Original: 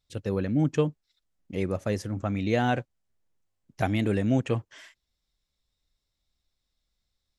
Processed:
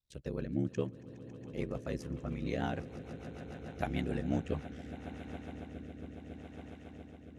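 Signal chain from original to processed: ring modulator 35 Hz; swelling echo 0.138 s, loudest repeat 8, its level -18 dB; rotary speaker horn 6.7 Hz, later 0.7 Hz, at 4.01; gain -5.5 dB

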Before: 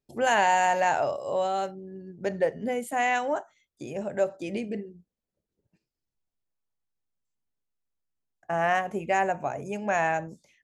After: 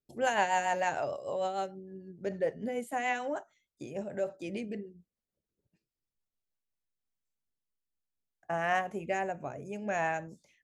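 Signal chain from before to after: rotary speaker horn 6.7 Hz, later 0.6 Hz, at 6.31; gain -3.5 dB

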